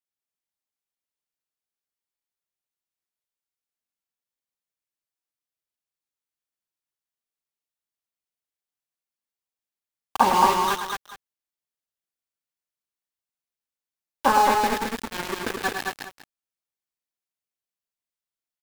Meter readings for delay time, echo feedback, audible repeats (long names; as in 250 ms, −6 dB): 106 ms, repeats not evenly spaced, 3